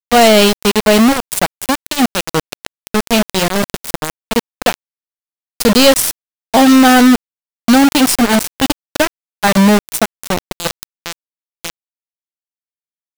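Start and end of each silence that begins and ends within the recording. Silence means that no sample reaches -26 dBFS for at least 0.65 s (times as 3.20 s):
4.74–5.60 s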